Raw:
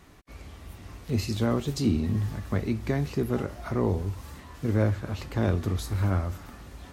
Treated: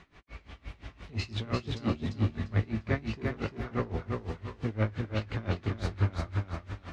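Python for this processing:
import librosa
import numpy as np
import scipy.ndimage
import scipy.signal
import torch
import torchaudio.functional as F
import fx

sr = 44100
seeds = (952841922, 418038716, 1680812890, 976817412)

p1 = fx.air_absorb(x, sr, metres=120.0)
p2 = 10.0 ** (-20.0 / 20.0) * np.tanh(p1 / 10.0 ** (-20.0 / 20.0))
p3 = fx.peak_eq(p2, sr, hz=2500.0, db=7.0, octaves=2.0)
p4 = fx.doubler(p3, sr, ms=18.0, db=-11.0)
p5 = p4 + fx.echo_feedback(p4, sr, ms=347, feedback_pct=33, wet_db=-3.0, dry=0)
y = p5 * 10.0 ** (-21 * (0.5 - 0.5 * np.cos(2.0 * np.pi * 5.8 * np.arange(len(p5)) / sr)) / 20.0)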